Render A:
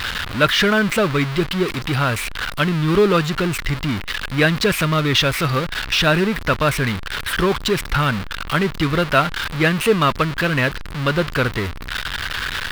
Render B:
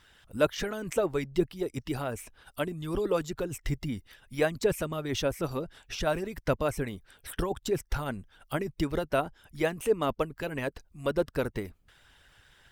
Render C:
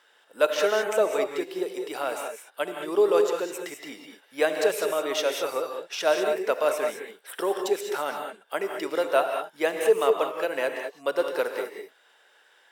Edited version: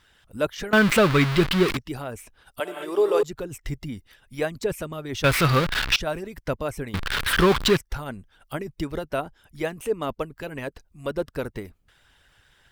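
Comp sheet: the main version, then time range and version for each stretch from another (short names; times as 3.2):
B
0.73–1.77 from A
2.6–3.23 from C
5.24–5.96 from A
6.94–7.77 from A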